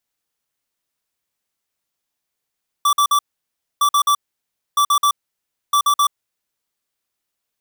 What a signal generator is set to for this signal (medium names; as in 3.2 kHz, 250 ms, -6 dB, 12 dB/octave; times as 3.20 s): beep pattern square 1.16 kHz, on 0.08 s, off 0.05 s, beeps 3, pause 0.62 s, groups 4, -14.5 dBFS